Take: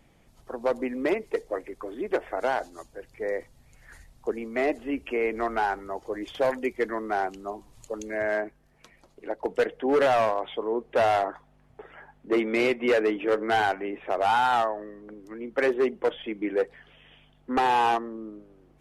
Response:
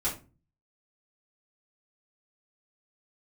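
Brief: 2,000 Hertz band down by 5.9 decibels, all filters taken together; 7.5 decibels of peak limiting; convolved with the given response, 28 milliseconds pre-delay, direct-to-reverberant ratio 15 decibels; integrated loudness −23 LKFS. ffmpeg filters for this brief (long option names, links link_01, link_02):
-filter_complex "[0:a]equalizer=frequency=2000:width_type=o:gain=-8,alimiter=limit=-23.5dB:level=0:latency=1,asplit=2[link_01][link_02];[1:a]atrim=start_sample=2205,adelay=28[link_03];[link_02][link_03]afir=irnorm=-1:irlink=0,volume=-21.5dB[link_04];[link_01][link_04]amix=inputs=2:normalize=0,volume=10dB"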